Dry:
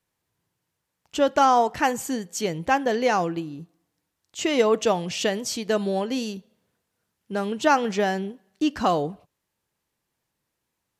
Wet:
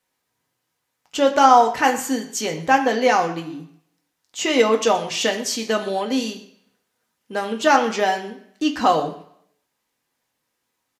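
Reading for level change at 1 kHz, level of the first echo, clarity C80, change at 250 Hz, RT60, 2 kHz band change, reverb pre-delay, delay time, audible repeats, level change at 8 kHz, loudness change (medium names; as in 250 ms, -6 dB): +5.5 dB, -19.0 dB, 13.5 dB, +2.5 dB, 0.60 s, +5.5 dB, 3 ms, 124 ms, 1, +5.0 dB, +4.5 dB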